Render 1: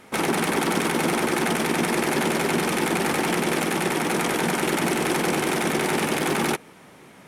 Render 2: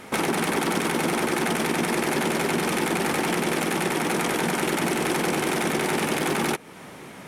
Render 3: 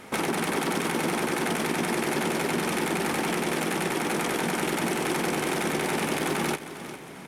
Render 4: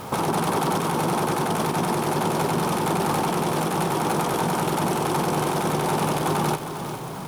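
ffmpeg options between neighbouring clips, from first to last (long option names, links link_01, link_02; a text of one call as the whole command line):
ffmpeg -i in.wav -af "acompressor=threshold=-34dB:ratio=2,volume=6.5dB" out.wav
ffmpeg -i in.wav -af "aecho=1:1:403|806|1209|1612:0.224|0.094|0.0395|0.0166,volume=-3dB" out.wav
ffmpeg -i in.wav -af "aeval=exprs='val(0)+0.5*0.01*sgn(val(0))':channel_layout=same,alimiter=limit=-18.5dB:level=0:latency=1:release=60,equalizer=frequency=125:width_type=o:width=1:gain=10,equalizer=frequency=250:width_type=o:width=1:gain=-5,equalizer=frequency=1000:width_type=o:width=1:gain=7,equalizer=frequency=2000:width_type=o:width=1:gain=-11,equalizer=frequency=8000:width_type=o:width=1:gain=-3,volume=4.5dB" out.wav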